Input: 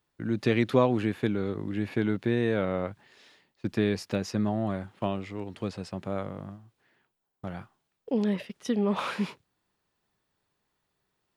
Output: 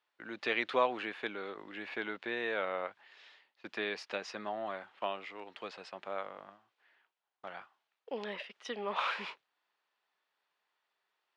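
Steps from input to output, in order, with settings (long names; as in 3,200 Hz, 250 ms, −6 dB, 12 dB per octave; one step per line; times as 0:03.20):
band-pass filter 750–3,800 Hz
parametric band 2,900 Hz +2 dB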